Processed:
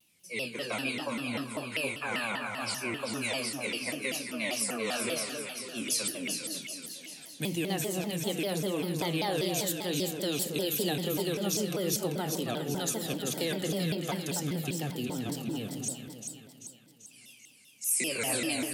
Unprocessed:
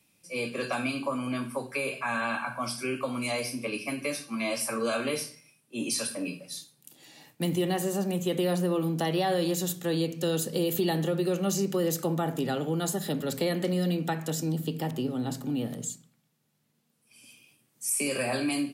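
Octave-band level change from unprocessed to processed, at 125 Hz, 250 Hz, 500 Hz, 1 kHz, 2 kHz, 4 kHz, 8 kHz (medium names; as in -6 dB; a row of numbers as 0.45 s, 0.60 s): -4.5 dB, -4.5 dB, -4.0 dB, -4.5 dB, -0.5 dB, +2.5 dB, +2.0 dB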